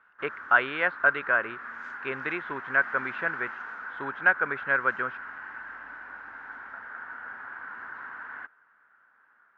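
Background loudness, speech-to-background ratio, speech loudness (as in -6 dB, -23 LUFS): -39.0 LUFS, 12.0 dB, -27.0 LUFS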